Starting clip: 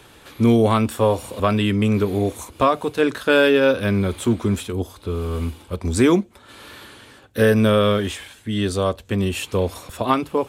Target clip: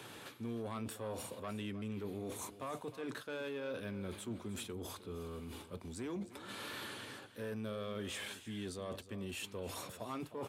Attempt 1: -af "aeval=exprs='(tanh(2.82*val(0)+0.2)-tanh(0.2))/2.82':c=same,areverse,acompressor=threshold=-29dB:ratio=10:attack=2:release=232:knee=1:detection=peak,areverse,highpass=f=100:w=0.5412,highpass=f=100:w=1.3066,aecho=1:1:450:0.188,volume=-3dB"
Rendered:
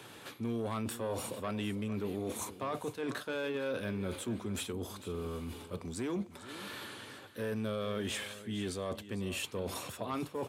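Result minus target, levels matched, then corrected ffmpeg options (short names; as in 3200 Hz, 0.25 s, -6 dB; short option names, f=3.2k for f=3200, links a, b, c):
echo 0.142 s late; compressor: peak gain reduction -6 dB
-af "aeval=exprs='(tanh(2.82*val(0)+0.2)-tanh(0.2))/2.82':c=same,areverse,acompressor=threshold=-35.5dB:ratio=10:attack=2:release=232:knee=1:detection=peak,areverse,highpass=f=100:w=0.5412,highpass=f=100:w=1.3066,aecho=1:1:308:0.188,volume=-3dB"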